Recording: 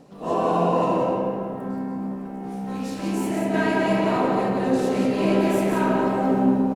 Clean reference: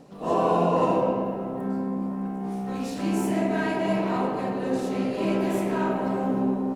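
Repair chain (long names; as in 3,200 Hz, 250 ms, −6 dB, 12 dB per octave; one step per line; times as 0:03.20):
echo removal 177 ms −5 dB
level 0 dB, from 0:03.54 −4 dB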